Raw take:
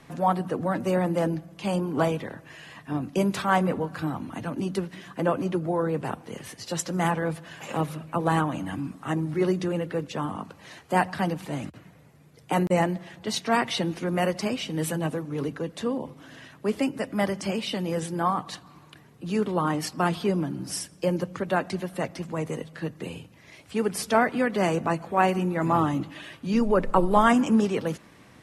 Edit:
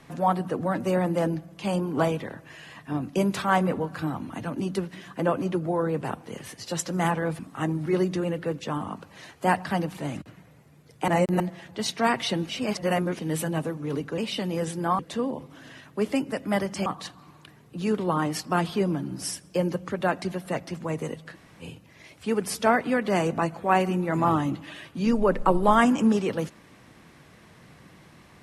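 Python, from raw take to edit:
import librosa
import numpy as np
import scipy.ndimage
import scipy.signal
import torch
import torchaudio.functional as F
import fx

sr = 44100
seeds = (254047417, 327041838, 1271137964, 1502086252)

y = fx.edit(x, sr, fx.cut(start_s=7.39, length_s=1.48),
    fx.reverse_span(start_s=12.56, length_s=0.32),
    fx.reverse_span(start_s=13.97, length_s=0.7),
    fx.move(start_s=17.53, length_s=0.81, to_s=15.66),
    fx.room_tone_fill(start_s=22.81, length_s=0.29, crossfade_s=0.06), tone=tone)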